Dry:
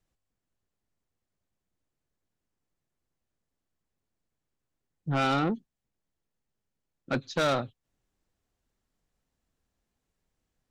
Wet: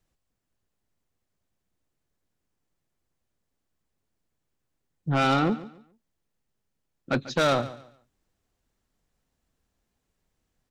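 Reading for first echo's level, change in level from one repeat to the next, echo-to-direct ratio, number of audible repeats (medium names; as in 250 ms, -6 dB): -16.5 dB, -11.5 dB, -16.0 dB, 2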